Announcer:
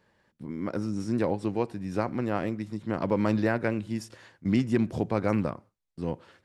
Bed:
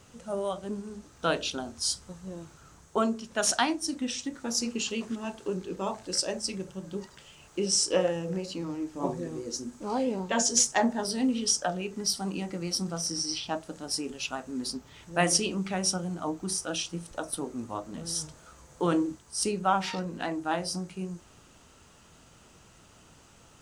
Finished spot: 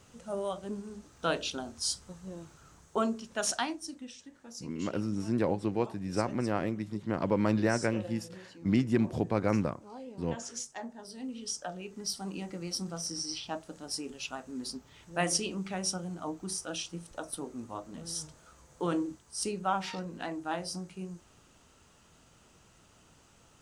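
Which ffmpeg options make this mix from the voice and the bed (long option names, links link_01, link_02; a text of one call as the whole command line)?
ffmpeg -i stem1.wav -i stem2.wav -filter_complex "[0:a]adelay=4200,volume=-2dB[link_01];[1:a]volume=8.5dB,afade=type=out:start_time=3.2:duration=0.98:silence=0.211349,afade=type=in:start_time=11.02:duration=1.42:silence=0.266073[link_02];[link_01][link_02]amix=inputs=2:normalize=0" out.wav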